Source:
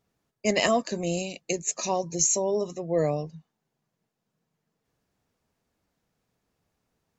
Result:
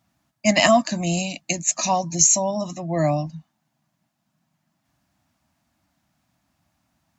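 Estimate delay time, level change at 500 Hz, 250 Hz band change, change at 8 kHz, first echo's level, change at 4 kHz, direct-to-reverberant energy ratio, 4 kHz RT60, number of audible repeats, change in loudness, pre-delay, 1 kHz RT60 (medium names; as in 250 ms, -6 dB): no echo, +3.0 dB, +7.0 dB, +7.5 dB, no echo, +7.5 dB, no reverb, no reverb, no echo, +6.5 dB, no reverb, no reverb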